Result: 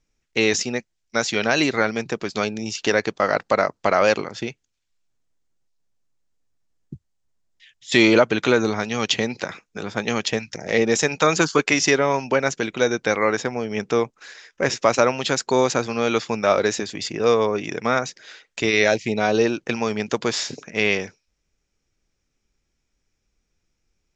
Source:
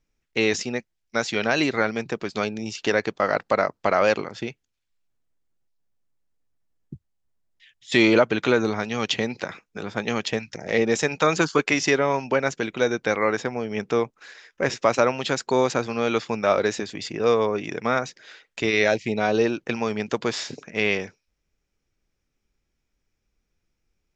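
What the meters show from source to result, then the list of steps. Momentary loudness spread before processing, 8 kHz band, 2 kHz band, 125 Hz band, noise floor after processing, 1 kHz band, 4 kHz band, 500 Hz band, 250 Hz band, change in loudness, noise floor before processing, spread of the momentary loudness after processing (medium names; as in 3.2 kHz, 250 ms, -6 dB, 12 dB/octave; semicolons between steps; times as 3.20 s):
10 LU, no reading, +2.5 dB, +2.0 dB, -75 dBFS, +2.0 dB, +4.0 dB, +2.0 dB, +2.0 dB, +2.5 dB, -78 dBFS, 9 LU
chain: resonant low-pass 7.1 kHz, resonance Q 1.7; trim +2 dB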